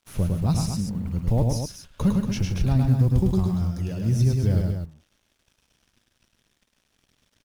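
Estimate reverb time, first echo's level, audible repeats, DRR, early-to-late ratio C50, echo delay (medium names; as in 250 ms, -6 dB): no reverb, -3.5 dB, 3, no reverb, no reverb, 105 ms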